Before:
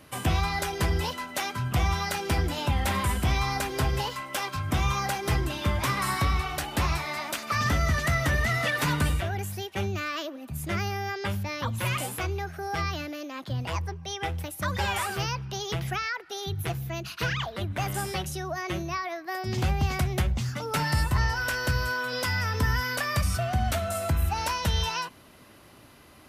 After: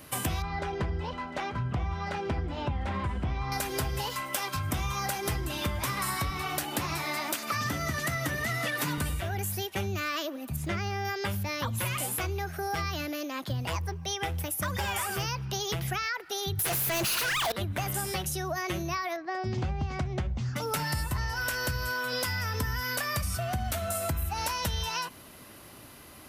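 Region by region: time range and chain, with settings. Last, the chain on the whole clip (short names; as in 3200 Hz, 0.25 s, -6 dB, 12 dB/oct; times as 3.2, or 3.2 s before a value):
0.42–3.52 tape spacing loss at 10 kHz 32 dB + echo 0.702 s -18 dB
6.3–8.98 HPF 95 Hz 24 dB/oct + bell 310 Hz +6 dB 0.38 oct
10.56–11.05 air absorption 71 m + requantised 12-bit, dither none
14.41–15.27 notch 4100 Hz, Q 8.3 + overloaded stage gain 21.5 dB
16.59–17.52 bell 11000 Hz +13 dB 1.3 oct + negative-ratio compressor -39 dBFS + overdrive pedal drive 34 dB, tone 4900 Hz, clips at -19.5 dBFS
19.16–20.56 LPF 6700 Hz 24 dB/oct + high shelf 2200 Hz -10.5 dB
whole clip: high shelf 8900 Hz +11 dB; compressor, threshold -30 dBFS; gain +2 dB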